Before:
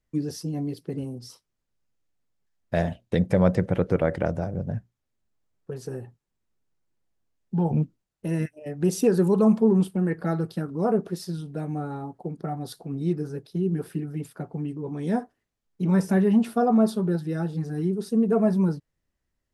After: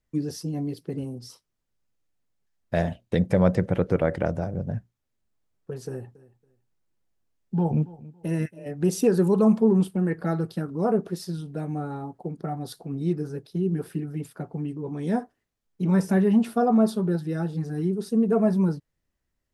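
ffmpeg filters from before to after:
ffmpeg -i in.wav -filter_complex "[0:a]asettb=1/sr,asplit=3[link_01][link_02][link_03];[link_01]atrim=end=5.874[link_04];[link_02]atrim=start=5.87:end=8.71,asetpts=PTS-STARTPTS,afade=type=in:duration=0.004:curve=qsin,afade=type=out:start_time=2.836:duration=0.004:curve=qsin,aecho=1:1:279|558:0.1|0.023,atrim=end_sample=125244[link_05];[link_03]atrim=start=8.706[link_06];[link_04][link_05]acrossfade=duration=0.004:curve1=hsin:curve2=qsin[link_07];[link_07][link_06]acrossfade=duration=0.004:curve1=qsin:curve2=hsin" out.wav

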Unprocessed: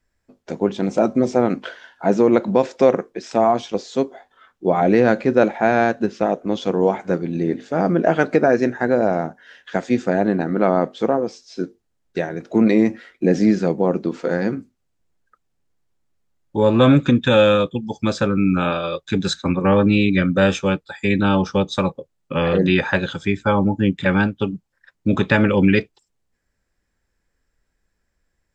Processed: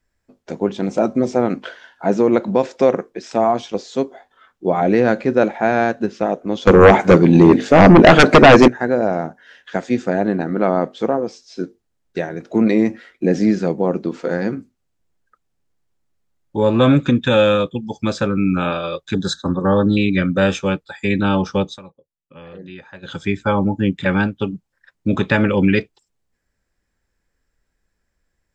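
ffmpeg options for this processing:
ffmpeg -i in.wav -filter_complex "[0:a]asettb=1/sr,asplit=3[link_01][link_02][link_03];[link_01]atrim=end=6.674[link_04];[link_02]atrim=start=6.67:end=8.68,asetpts=PTS-STARTPTS,afade=type=in:duration=0.004:curve=qsin,afade=type=out:start_time=2.006:duration=0.004:curve=qsin,aeval=exprs='0.794*sin(PI/2*3.55*val(0)/0.794)':channel_layout=same[link_05];[link_03]atrim=start=8.676[link_06];[link_04][link_05]acrossfade=duration=0.004:curve1=hsin:curve2=qsin[link_07];[link_07][link_06]acrossfade=duration=0.004:curve1=qsin:curve2=hsin,asettb=1/sr,asplit=3[link_08][link_09][link_10];[link_08]atrim=end=19.144[link_11];[link_09]atrim=start=19.14:end=19.97,asetpts=PTS-STARTPTS,afade=type=in:duration=0.004:curve=qsin,afade=type=out:start_time=0.826:duration=0.004:curve=qsin,asuperstop=centerf=2400:order=12:qfactor=1.7[link_12];[link_10]atrim=start=19.966[link_13];[link_11][link_12]acrossfade=duration=0.004:curve1=hsin:curve2=qsin[link_14];[link_14][link_13]acrossfade=duration=0.004:curve1=qsin:curve2=hsin,asplit=3[link_15][link_16][link_17];[link_15]atrim=end=21.79,asetpts=PTS-STARTPTS,afade=type=out:start_time=21.67:duration=0.12:silence=0.1[link_18];[link_16]atrim=start=21.79:end=23.02,asetpts=PTS-STARTPTS,volume=-20dB[link_19];[link_17]atrim=start=23.02,asetpts=PTS-STARTPTS,afade=type=in:duration=0.12:silence=0.1[link_20];[link_18][link_19][link_20]concat=n=3:v=0:a=1" out.wav

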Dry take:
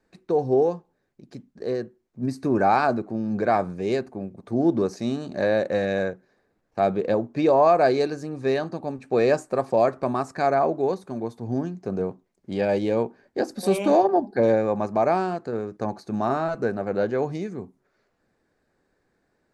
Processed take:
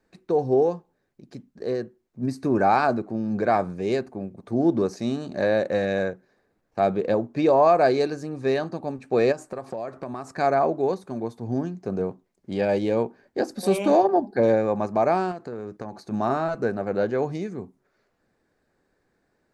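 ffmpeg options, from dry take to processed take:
ffmpeg -i in.wav -filter_complex "[0:a]asplit=3[link_01][link_02][link_03];[link_01]afade=type=out:start_time=9.31:duration=0.02[link_04];[link_02]acompressor=threshold=-29dB:ratio=5:attack=3.2:release=140:knee=1:detection=peak,afade=type=in:start_time=9.31:duration=0.02,afade=type=out:start_time=10.29:duration=0.02[link_05];[link_03]afade=type=in:start_time=10.29:duration=0.02[link_06];[link_04][link_05][link_06]amix=inputs=3:normalize=0,asettb=1/sr,asplit=3[link_07][link_08][link_09];[link_07]atrim=end=15.314[link_10];[link_08]atrim=start=15.31:end=16.11,asetpts=PTS-STARTPTS,afade=type=in:duration=0.004:curve=qsin,afade=type=out:start_time=0.796:duration=0.004:curve=qsin,acompressor=threshold=-29dB:ratio=6:attack=3.2:release=140:knee=1:detection=peak[link_11];[link_09]atrim=start=16.106[link_12];[link_10][link_11]acrossfade=duration=0.004:curve1=hsin:curve2=qsin[link_13];[link_13][link_12]acrossfade=duration=0.004:curve1=qsin:curve2=hsin" out.wav

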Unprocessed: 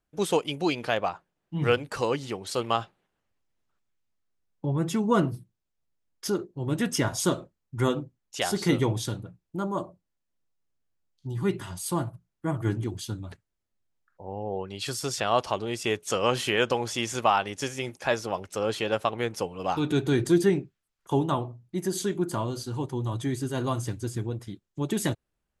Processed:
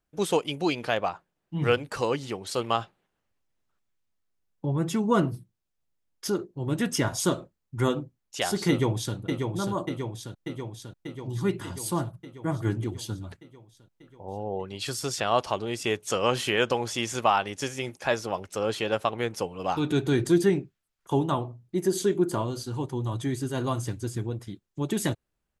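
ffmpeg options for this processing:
ffmpeg -i in.wav -filter_complex "[0:a]asplit=2[link_01][link_02];[link_02]afade=type=in:start_time=8.69:duration=0.01,afade=type=out:start_time=9.16:duration=0.01,aecho=0:1:590|1180|1770|2360|2950|3540|4130|4720|5310|5900|6490|7080:0.562341|0.393639|0.275547|0.192883|0.135018|0.0945127|0.0661589|0.0463112|0.0324179|0.0226925|0.0158848|0.0111193[link_03];[link_01][link_03]amix=inputs=2:normalize=0,asettb=1/sr,asplit=3[link_04][link_05][link_06];[link_04]atrim=end=21.654[link_07];[link_05]atrim=start=21.65:end=22.42,asetpts=PTS-STARTPTS,afade=type=in:duration=0.004:curve=qsin,afade=type=out:start_time=0.766:duration=0.004:curve=qsin,equalizer=frequency=410:width_type=o:width=0.77:gain=6[link_08];[link_06]atrim=start=22.416[link_09];[link_07][link_08]acrossfade=duration=0.004:curve1=hsin:curve2=qsin[link_10];[link_10][link_09]acrossfade=duration=0.004:curve1=qsin:curve2=hsin" out.wav

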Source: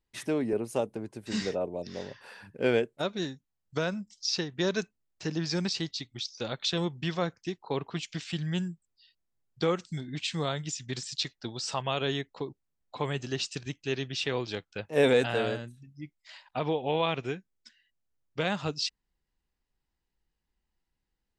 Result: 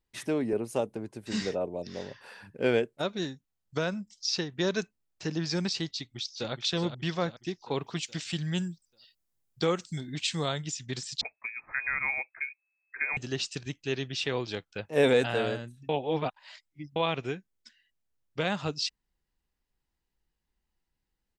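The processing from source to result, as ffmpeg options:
ffmpeg -i in.wav -filter_complex "[0:a]asplit=2[link_01][link_02];[link_02]afade=type=in:start_time=5.92:duration=0.01,afade=type=out:start_time=6.52:duration=0.01,aecho=0:1:420|840|1260|1680|2100|2520:0.421697|0.210848|0.105424|0.0527121|0.026356|0.013178[link_03];[link_01][link_03]amix=inputs=2:normalize=0,asettb=1/sr,asplit=3[link_04][link_05][link_06];[link_04]atrim=end=7.714[link_07];[link_05]atrim=start=7.71:end=10.58,asetpts=PTS-STARTPTS,afade=type=in:duration=0.004:curve=qsin,afade=type=out:start_time=2.866:duration=0.004:curve=qsin,highshelf=frequency=6400:gain=10.5[link_08];[link_06]atrim=start=10.576[link_09];[link_07][link_08]acrossfade=duration=0.004:curve1=hsin:curve2=qsin[link_10];[link_10][link_09]acrossfade=duration=0.004:curve1=qsin:curve2=hsin,asettb=1/sr,asplit=3[link_11][link_12][link_13];[link_11]atrim=end=11.214[link_14];[link_12]atrim=start=11.21:end=13.17,asetpts=PTS-STARTPTS,afade=type=in:duration=0.004:curve=qsin,afade=type=out:start_time=1.956:duration=0.004:curve=qsin,lowpass=frequency=2200:width_type=q:width=0.5098,lowpass=frequency=2200:width_type=q:width=0.6013,lowpass=frequency=2200:width_type=q:width=0.9,lowpass=frequency=2200:width_type=q:width=2.563,afreqshift=-2600[link_15];[link_13]atrim=start=13.166[link_16];[link_14][link_15]acrossfade=duration=0.004:curve1=hsin:curve2=qsin[link_17];[link_17][link_16]acrossfade=duration=0.004:curve1=qsin:curve2=hsin,asplit=3[link_18][link_19][link_20];[link_18]atrim=end=15.892[link_21];[link_19]atrim=start=15.888:end=16.962,asetpts=PTS-STARTPTS,areverse[link_22];[link_20]atrim=start=16.958[link_23];[link_21][link_22]acrossfade=duration=0.004:curve1=hsin:curve2=hsin[link_24];[link_24][link_23]acrossfade=duration=0.004:curve1=hsin:curve2=hsin" out.wav

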